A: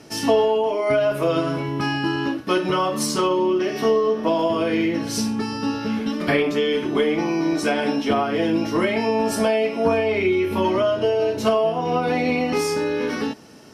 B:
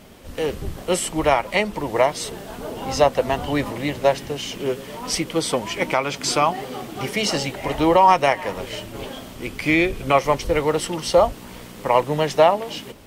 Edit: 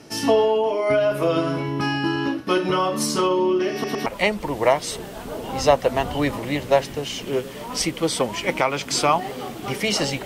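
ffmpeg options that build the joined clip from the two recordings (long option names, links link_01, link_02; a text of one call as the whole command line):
ffmpeg -i cue0.wav -i cue1.wav -filter_complex "[0:a]apad=whole_dur=10.25,atrim=end=10.25,asplit=3[link_01][link_02][link_03];[link_01]atrim=end=3.842[link_04];[link_02]atrim=start=3.728:end=3.842[link_05];[link_03]atrim=start=3.728:end=3.842[link_06];[1:a]atrim=start=1.388:end=7.58[link_07];[link_04][link_05]acrossfade=duration=0.004:curve1=hsin:curve2=hsin[link_08];[link_08][link_06]acrossfade=duration=0.004:curve1=hsin:curve2=hsin[link_09];[link_09][link_07]acrossfade=duration=0.004:curve1=hsin:curve2=hsin" out.wav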